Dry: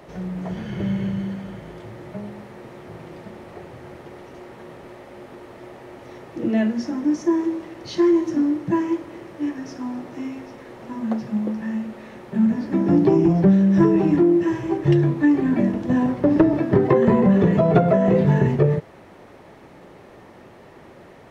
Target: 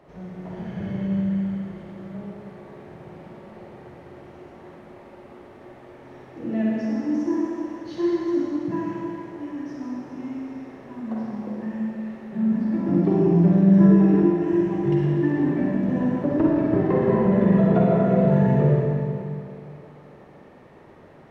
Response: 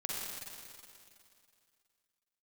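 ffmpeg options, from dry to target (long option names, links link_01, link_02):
-filter_complex "[0:a]highshelf=frequency=3100:gain=-9[link_01];[1:a]atrim=start_sample=2205[link_02];[link_01][link_02]afir=irnorm=-1:irlink=0,volume=-5.5dB"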